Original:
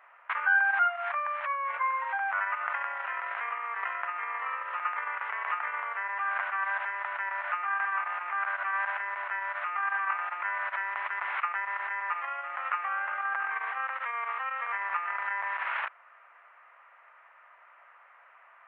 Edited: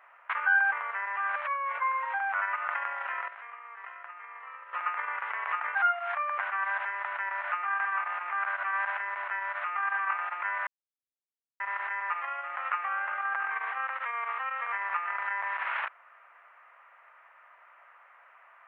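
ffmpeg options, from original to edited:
ffmpeg -i in.wav -filter_complex "[0:a]asplit=9[link_01][link_02][link_03][link_04][link_05][link_06][link_07][link_08][link_09];[link_01]atrim=end=0.722[link_10];[link_02]atrim=start=5.738:end=6.382[link_11];[link_03]atrim=start=1.348:end=3.272[link_12];[link_04]atrim=start=3.268:end=4.722,asetpts=PTS-STARTPTS,volume=-11dB[link_13];[link_05]atrim=start=4.718:end=5.742[link_14];[link_06]atrim=start=0.718:end=1.352[link_15];[link_07]atrim=start=6.378:end=10.67,asetpts=PTS-STARTPTS,afade=type=out:start_time=4.288:duration=0.004:curve=hsin[link_16];[link_08]atrim=start=10.67:end=11.6,asetpts=PTS-STARTPTS,volume=0[link_17];[link_09]atrim=start=11.6,asetpts=PTS-STARTPTS,afade=type=in:duration=0.004:curve=hsin[link_18];[link_10][link_11]acrossfade=duration=0.004:curve1=hsin:curve2=hsin[link_19];[link_19][link_12]acrossfade=duration=0.004:curve1=hsin:curve2=hsin[link_20];[link_20][link_13]acrossfade=duration=0.004:curve1=hsin:curve2=hsin[link_21];[link_21][link_14]acrossfade=duration=0.004:curve1=hsin:curve2=hsin[link_22];[link_22][link_15]acrossfade=duration=0.004:curve1=hsin:curve2=hsin[link_23];[link_16][link_17][link_18]concat=n=3:v=0:a=1[link_24];[link_23][link_24]acrossfade=duration=0.004:curve1=hsin:curve2=hsin" out.wav

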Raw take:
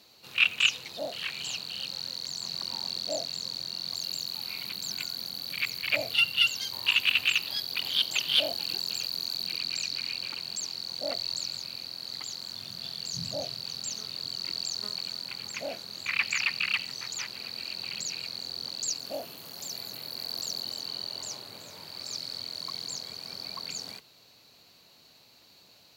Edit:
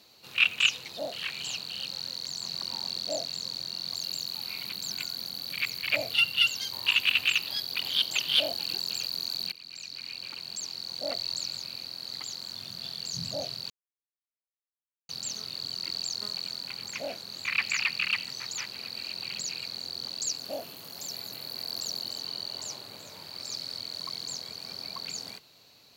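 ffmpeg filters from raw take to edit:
ffmpeg -i in.wav -filter_complex "[0:a]asplit=3[link_01][link_02][link_03];[link_01]atrim=end=9.52,asetpts=PTS-STARTPTS,afade=type=out:start_time=9.516:duration=0.004:curve=hsin:silence=0.125893[link_04];[link_02]atrim=start=9.52:end=13.7,asetpts=PTS-STARTPTS,afade=type=in:duration=1.93:curve=qsin:silence=0.125893,afade=type=out:start_time=4.176:duration=0.004:curve=hsin,apad=pad_dur=1.39[link_05];[link_03]atrim=start=13.7,asetpts=PTS-STARTPTS,afade=type=in:duration=0.004:curve=hsin[link_06];[link_04][link_05][link_06]concat=n=3:v=0:a=1" out.wav

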